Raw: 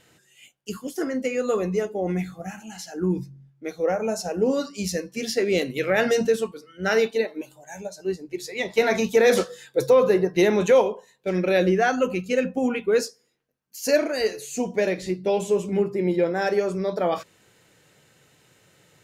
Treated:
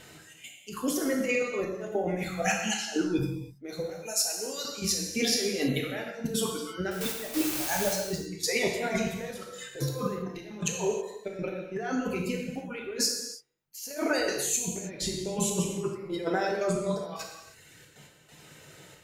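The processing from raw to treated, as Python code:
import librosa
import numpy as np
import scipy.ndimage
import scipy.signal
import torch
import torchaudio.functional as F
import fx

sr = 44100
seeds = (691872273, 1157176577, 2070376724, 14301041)

y = fx.weighting(x, sr, curve='D', at=(2.42, 3.19))
y = fx.dereverb_blind(y, sr, rt60_s=1.0)
y = fx.differentiator(y, sr, at=(3.9, 4.65))
y = fx.over_compress(y, sr, threshold_db=-32.0, ratio=-1.0)
y = fx.quant_dither(y, sr, seeds[0], bits=6, dither='triangular', at=(6.91, 7.93))
y = fx.step_gate(y, sr, bpm=137, pattern='xxx.x..xxx', floor_db=-12.0, edge_ms=4.5)
y = fx.rev_gated(y, sr, seeds[1], gate_ms=350, shape='falling', drr_db=0.0)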